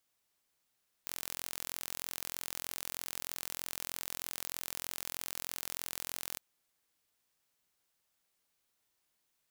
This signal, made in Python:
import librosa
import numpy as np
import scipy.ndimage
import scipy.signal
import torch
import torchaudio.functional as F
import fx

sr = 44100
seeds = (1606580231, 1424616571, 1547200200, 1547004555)

y = 10.0 ** (-12.0 / 20.0) * (np.mod(np.arange(round(5.32 * sr)), round(sr / 43.2)) == 0)